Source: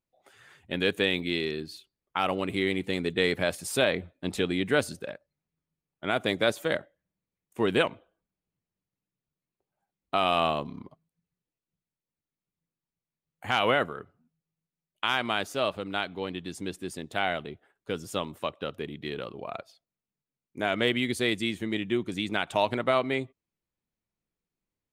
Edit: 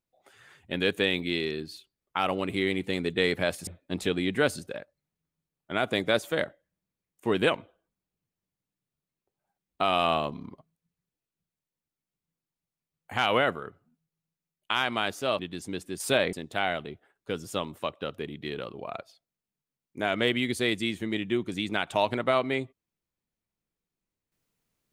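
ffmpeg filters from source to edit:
-filter_complex "[0:a]asplit=5[a][b][c][d][e];[a]atrim=end=3.672[f];[b]atrim=start=3.998:end=15.722[g];[c]atrim=start=16.318:end=16.932[h];[d]atrim=start=3.668:end=4.002[i];[e]atrim=start=16.928[j];[f][g]acrossfade=d=0.004:c1=hsin:c2=hsin[k];[k][h]acrossfade=d=0.004:c1=hsin:c2=hsin[l];[l][i]acrossfade=d=0.004:c1=hsin:c2=hsin[m];[m][j]acrossfade=d=0.004:c1=hsin:c2=hsin"

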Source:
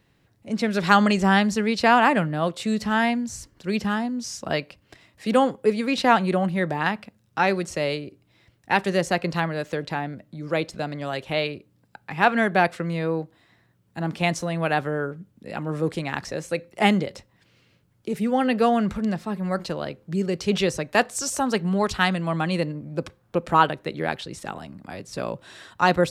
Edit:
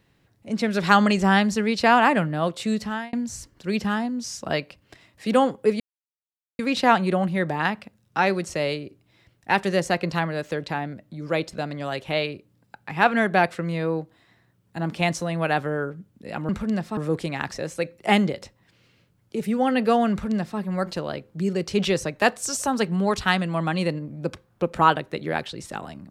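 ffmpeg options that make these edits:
-filter_complex "[0:a]asplit=5[a][b][c][d][e];[a]atrim=end=3.13,asetpts=PTS-STARTPTS,afade=t=out:st=2.73:d=0.4[f];[b]atrim=start=3.13:end=5.8,asetpts=PTS-STARTPTS,afade=t=in:d=0.004:c=hsin,afade=t=out:st=2.666:d=0.004:c=hsin,apad=pad_dur=0.79[g];[c]atrim=start=5.8:end=15.702,asetpts=PTS-STARTPTS,afade=t=in:d=0.004:c=hsin[h];[d]atrim=start=18.838:end=19.322[i];[e]atrim=start=15.698[j];[f][g][h]concat=n=3:v=0:a=1[k];[k][i]acrossfade=d=0.004:c1=hsin:c2=hsin[l];[l][j]acrossfade=d=0.004:c1=hsin:c2=hsin"

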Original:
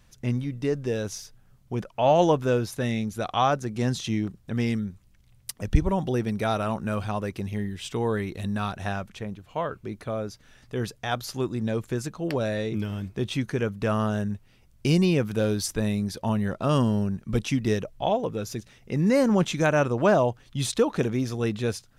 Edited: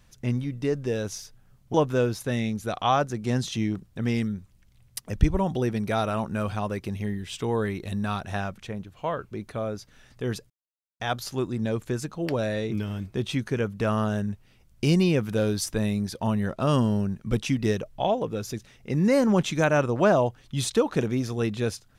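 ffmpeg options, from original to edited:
-filter_complex "[0:a]asplit=3[a][b][c];[a]atrim=end=1.742[d];[b]atrim=start=2.258:end=11.02,asetpts=PTS-STARTPTS,afade=t=out:st=8.758:d=0.004:c=hsin,apad=pad_dur=0.5[e];[c]atrim=start=11.02,asetpts=PTS-STARTPTS,afade=t=in:d=0.004:c=hsin[f];[e][f]concat=n=2:v=0:a=1[g];[d][g]acrossfade=d=0.004:c1=hsin:c2=hsin"

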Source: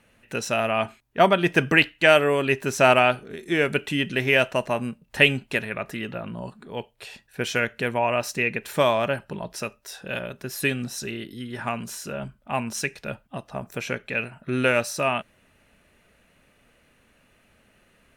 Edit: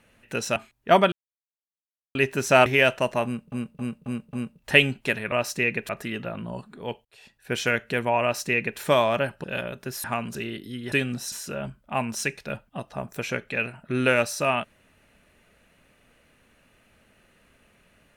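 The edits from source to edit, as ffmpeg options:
-filter_complex "[0:a]asplit=17[a][b][c][d][e][f][g][h][i][j][k][l][m][n][o][p][q];[a]atrim=end=0.562[r];[b]atrim=start=0.848:end=1.41,asetpts=PTS-STARTPTS,afade=t=out:st=0.558:d=0.004:c=hsin[s];[c]atrim=start=1.41:end=2.44,asetpts=PTS-STARTPTS,volume=0[t];[d]atrim=start=2.44:end=2.952,asetpts=PTS-STARTPTS,afade=t=in:d=0.004:c=hsin[u];[e]atrim=start=4.198:end=5.062[v];[f]atrim=start=4.788:end=5.062[w];[g]atrim=start=4.788:end=5.062[x];[h]atrim=start=4.788:end=5.062[y];[i]atrim=start=4.788:end=5.782[z];[j]atrim=start=8.108:end=8.682[aa];[k]atrim=start=5.778:end=6.94,asetpts=PTS-STARTPTS,afade=t=out:st=1.158:d=0.004:c=hsin[ab];[l]atrim=start=6.94:end=9.332,asetpts=PTS-STARTPTS,afade=t=in:d=0.49[ac];[m]atrim=start=10.018:end=10.622[ad];[n]atrim=start=11.588:end=11.902[ae];[o]atrim=start=11.018:end=11.592[af];[p]atrim=start=10.618:end=11.022[ag];[q]atrim=start=11.898[ah];[s][t][u]concat=n=3:v=0:a=1[ai];[r][ai]acrossfade=d=0.004:c1=hsin:c2=hsin[aj];[aj][v]acrossfade=d=0.004:c1=hsin:c2=hsin[ak];[ak][w]acrossfade=d=0.004:c1=hsin:c2=hsin[al];[al][x]acrossfade=d=0.004:c1=hsin:c2=hsin[am];[am][y]acrossfade=d=0.004:c1=hsin:c2=hsin[an];[an][z]acrossfade=d=0.004:c1=hsin:c2=hsin[ao];[ao][aa]acrossfade=d=0.004:c1=hsin:c2=hsin[ap];[ab][ac]concat=n=2:v=0:a=1[aq];[ap][aq]acrossfade=d=0.004:c1=hsin:c2=hsin[ar];[ar][ad]acrossfade=d=0.004:c1=hsin:c2=hsin[as];[as][ae]acrossfade=d=0.004:c1=hsin:c2=hsin[at];[at][af]acrossfade=d=0.004:c1=hsin:c2=hsin[au];[au][ag]acrossfade=d=0.004:c1=hsin:c2=hsin[av];[av][ah]acrossfade=d=0.004:c1=hsin:c2=hsin"

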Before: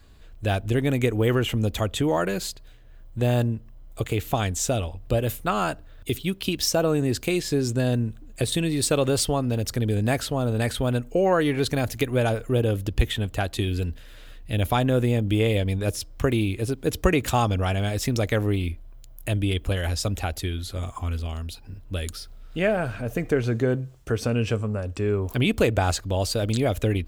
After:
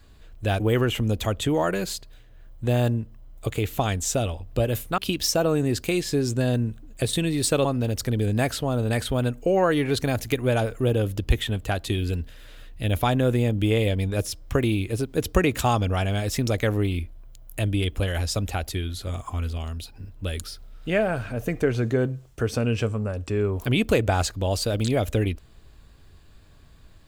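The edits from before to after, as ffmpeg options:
-filter_complex "[0:a]asplit=4[a][b][c][d];[a]atrim=end=0.602[e];[b]atrim=start=1.138:end=5.522[f];[c]atrim=start=6.368:end=9.042[g];[d]atrim=start=9.338[h];[e][f]acrossfade=d=0.004:c1=hsin:c2=hsin[i];[i][g]acrossfade=d=0.004:c1=hsin:c2=hsin[j];[j][h]acrossfade=d=0.004:c1=hsin:c2=hsin"

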